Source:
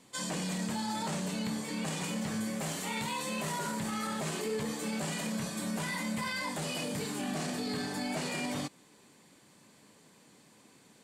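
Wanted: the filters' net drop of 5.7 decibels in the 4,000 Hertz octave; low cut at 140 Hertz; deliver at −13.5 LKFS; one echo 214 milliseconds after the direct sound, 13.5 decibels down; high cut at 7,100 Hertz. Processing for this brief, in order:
high-pass filter 140 Hz
low-pass filter 7,100 Hz
parametric band 4,000 Hz −7 dB
single-tap delay 214 ms −13.5 dB
level +23 dB

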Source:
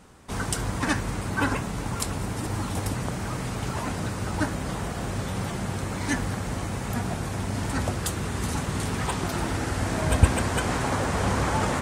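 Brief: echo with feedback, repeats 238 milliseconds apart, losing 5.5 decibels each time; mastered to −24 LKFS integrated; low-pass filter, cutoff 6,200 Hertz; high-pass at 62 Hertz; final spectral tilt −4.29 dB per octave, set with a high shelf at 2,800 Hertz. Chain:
high-pass filter 62 Hz
low-pass filter 6,200 Hz
high-shelf EQ 2,800 Hz +8 dB
repeating echo 238 ms, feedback 53%, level −5.5 dB
level +2 dB

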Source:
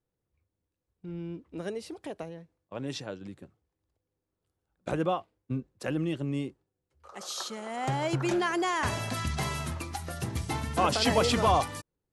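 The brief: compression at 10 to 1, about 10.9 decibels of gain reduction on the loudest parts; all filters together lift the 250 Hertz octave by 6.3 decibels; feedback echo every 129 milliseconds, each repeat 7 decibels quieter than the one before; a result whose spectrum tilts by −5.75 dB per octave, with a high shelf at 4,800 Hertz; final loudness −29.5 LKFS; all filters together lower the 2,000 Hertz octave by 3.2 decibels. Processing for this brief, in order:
parametric band 250 Hz +8.5 dB
parametric band 2,000 Hz −3 dB
high-shelf EQ 4,800 Hz −6.5 dB
downward compressor 10 to 1, threshold −27 dBFS
repeating echo 129 ms, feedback 45%, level −7 dB
level +3.5 dB

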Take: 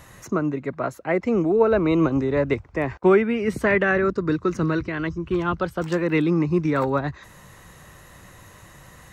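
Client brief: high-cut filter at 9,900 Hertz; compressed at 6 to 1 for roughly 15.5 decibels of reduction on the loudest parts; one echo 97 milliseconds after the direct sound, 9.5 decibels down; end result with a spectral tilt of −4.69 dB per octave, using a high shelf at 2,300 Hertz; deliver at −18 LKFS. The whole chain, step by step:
low-pass filter 9,900 Hz
high-shelf EQ 2,300 Hz −5 dB
downward compressor 6 to 1, threshold −29 dBFS
single-tap delay 97 ms −9.5 dB
level +14.5 dB

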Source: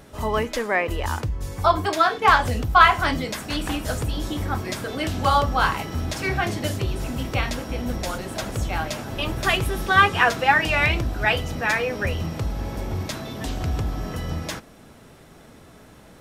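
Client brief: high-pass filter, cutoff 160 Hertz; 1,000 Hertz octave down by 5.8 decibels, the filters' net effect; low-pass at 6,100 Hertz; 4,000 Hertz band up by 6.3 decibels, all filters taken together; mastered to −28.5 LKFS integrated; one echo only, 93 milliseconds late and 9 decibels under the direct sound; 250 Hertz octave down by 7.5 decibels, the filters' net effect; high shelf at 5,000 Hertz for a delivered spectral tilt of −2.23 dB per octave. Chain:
high-pass filter 160 Hz
low-pass filter 6,100 Hz
parametric band 250 Hz −8.5 dB
parametric band 1,000 Hz −8 dB
parametric band 4,000 Hz +7 dB
high-shelf EQ 5,000 Hz +6.5 dB
single-tap delay 93 ms −9 dB
level −5 dB

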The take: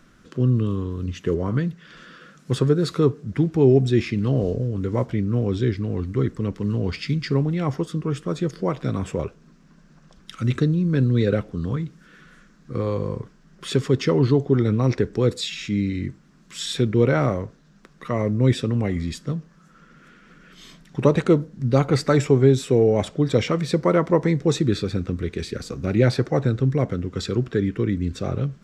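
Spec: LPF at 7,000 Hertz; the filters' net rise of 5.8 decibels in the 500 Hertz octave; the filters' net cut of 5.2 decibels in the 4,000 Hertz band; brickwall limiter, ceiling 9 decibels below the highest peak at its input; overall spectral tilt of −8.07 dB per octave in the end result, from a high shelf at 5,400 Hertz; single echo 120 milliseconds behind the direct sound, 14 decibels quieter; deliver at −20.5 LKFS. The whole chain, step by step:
low-pass filter 7,000 Hz
parametric band 500 Hz +7 dB
parametric band 4,000 Hz −7.5 dB
high-shelf EQ 5,400 Hz +4 dB
brickwall limiter −10 dBFS
single-tap delay 120 ms −14 dB
level +1.5 dB

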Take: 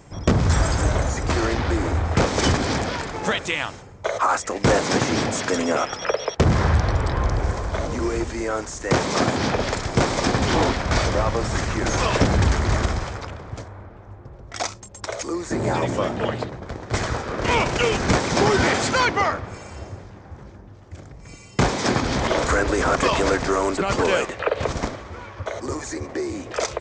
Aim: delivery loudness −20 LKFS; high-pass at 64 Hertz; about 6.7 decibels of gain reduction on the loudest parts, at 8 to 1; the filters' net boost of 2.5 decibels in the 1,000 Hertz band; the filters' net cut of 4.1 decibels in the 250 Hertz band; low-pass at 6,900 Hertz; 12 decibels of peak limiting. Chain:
high-pass filter 64 Hz
low-pass filter 6,900 Hz
parametric band 250 Hz −6 dB
parametric band 1,000 Hz +3.5 dB
downward compressor 8 to 1, threshold −21 dBFS
level +10.5 dB
brickwall limiter −10 dBFS

